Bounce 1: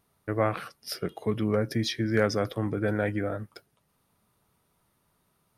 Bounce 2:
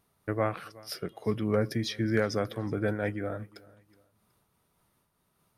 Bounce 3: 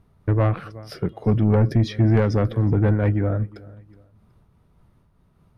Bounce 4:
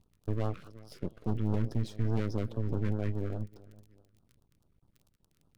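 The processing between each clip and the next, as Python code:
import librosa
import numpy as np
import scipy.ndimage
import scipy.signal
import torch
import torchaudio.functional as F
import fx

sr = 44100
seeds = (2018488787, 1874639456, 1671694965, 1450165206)

y1 = fx.echo_feedback(x, sr, ms=370, feedback_pct=33, wet_db=-23.5)
y1 = fx.am_noise(y1, sr, seeds[0], hz=5.7, depth_pct=60)
y1 = y1 * librosa.db_to_amplitude(1.0)
y2 = fx.riaa(y1, sr, side='playback')
y2 = 10.0 ** (-17.0 / 20.0) * np.tanh(y2 / 10.0 ** (-17.0 / 20.0))
y2 = y2 * librosa.db_to_amplitude(6.0)
y3 = fx.dmg_crackle(y2, sr, seeds[1], per_s=37.0, level_db=-36.0)
y3 = np.maximum(y3, 0.0)
y3 = fx.filter_lfo_notch(y3, sr, shape='sine', hz=4.8, low_hz=720.0, high_hz=2200.0, q=0.81)
y3 = y3 * librosa.db_to_amplitude(-8.5)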